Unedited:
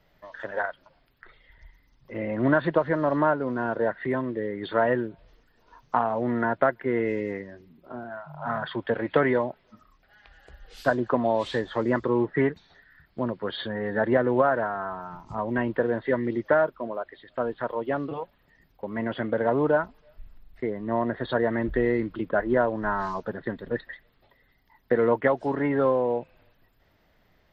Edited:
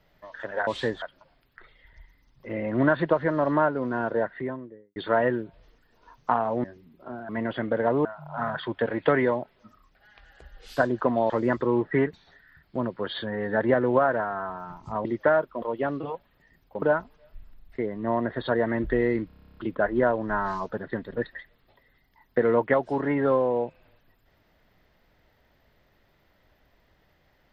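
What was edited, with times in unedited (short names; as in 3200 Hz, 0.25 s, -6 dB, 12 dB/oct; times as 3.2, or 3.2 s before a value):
3.74–4.61 studio fade out
6.29–7.48 cut
11.38–11.73 move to 0.67
15.48–16.3 cut
16.87–17.7 cut
18.9–19.66 move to 8.13
22.11 stutter 0.03 s, 11 plays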